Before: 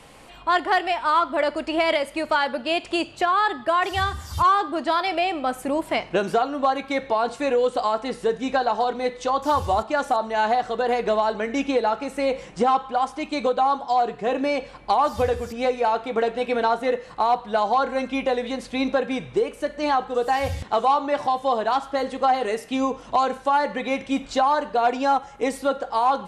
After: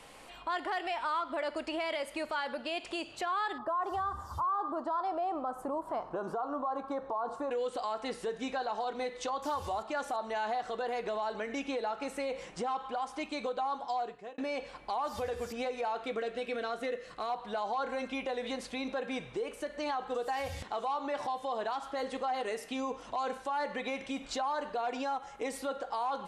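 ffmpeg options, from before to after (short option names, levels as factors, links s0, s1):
-filter_complex "[0:a]asettb=1/sr,asplit=3[s0][s1][s2];[s0]atrim=end=3.584[s3];[s1]atrim=start=3.58:end=7.51,asetpts=PTS-STARTPTS,afade=t=in:d=0.004:c=qsin,afade=t=out:st=3.926:d=0.004:c=qsin,highshelf=f=1600:t=q:w=3:g=-12.5[s4];[s2]atrim=start=7.506[s5];[s3][s4]acrossfade=d=0.004:c1=hsin:c2=qsin[s6];[s6][s5]acrossfade=d=0.004:c1=qsin:c2=hsin,asettb=1/sr,asplit=3[s7][s8][s9];[s7]atrim=end=16.044[s10];[s8]atrim=start=16.04:end=17.3,asetpts=PTS-STARTPTS,afade=t=in:d=0.004:c=qsin,afade=t=out:st=1.256:d=0.004:c=qsin,equalizer=f=880:t=o:w=0.33:g=-15[s11];[s9]atrim=start=17.296[s12];[s10][s11]acrossfade=d=0.004:c1=hsin:c2=qsin[s13];[s13][s12]acrossfade=d=0.004:c1=qsin:c2=hsin,asplit=2[s14][s15];[s14]atrim=end=14.38,asetpts=PTS-STARTPTS,afade=t=out:st=13.73:d=0.65[s16];[s15]atrim=start=14.38,asetpts=PTS-STARTPTS,afade=t=in:d=0.004:c=hsin[s17];[s16][s17]concat=n=2:v=0:a=1,alimiter=limit=0.0841:level=0:latency=1:release=108,equalizer=f=92:t=o:w=3:g=-8,volume=0.631"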